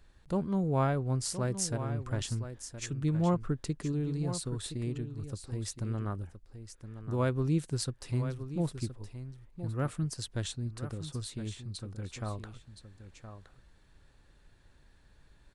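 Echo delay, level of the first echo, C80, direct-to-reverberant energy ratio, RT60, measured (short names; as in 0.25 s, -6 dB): 1.019 s, -11.0 dB, none, none, none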